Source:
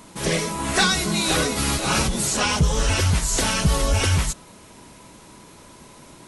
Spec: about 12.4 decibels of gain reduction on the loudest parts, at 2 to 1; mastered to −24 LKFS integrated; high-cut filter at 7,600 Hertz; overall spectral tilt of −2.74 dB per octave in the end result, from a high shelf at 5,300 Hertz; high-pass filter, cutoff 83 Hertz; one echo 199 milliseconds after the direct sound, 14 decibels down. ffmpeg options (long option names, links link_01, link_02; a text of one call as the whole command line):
ffmpeg -i in.wav -af "highpass=83,lowpass=7600,highshelf=frequency=5300:gain=6.5,acompressor=threshold=-38dB:ratio=2,aecho=1:1:199:0.2,volume=7dB" out.wav